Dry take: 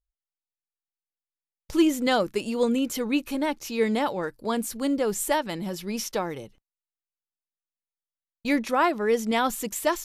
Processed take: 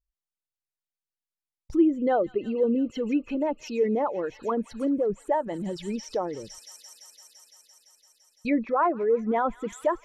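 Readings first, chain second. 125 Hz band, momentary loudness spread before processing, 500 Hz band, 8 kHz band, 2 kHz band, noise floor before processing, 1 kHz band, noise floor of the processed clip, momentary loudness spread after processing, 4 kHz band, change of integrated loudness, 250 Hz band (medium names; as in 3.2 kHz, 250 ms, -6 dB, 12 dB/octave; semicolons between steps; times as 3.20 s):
-2.0 dB, 8 LU, +1.0 dB, -12.5 dB, -8.0 dB, under -85 dBFS, -1.0 dB, under -85 dBFS, 11 LU, -12.5 dB, -1.0 dB, -0.5 dB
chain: resonances exaggerated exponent 2; feedback echo behind a high-pass 170 ms, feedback 82%, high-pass 3.1 kHz, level -8.5 dB; low-pass that closes with the level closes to 1.3 kHz, closed at -23 dBFS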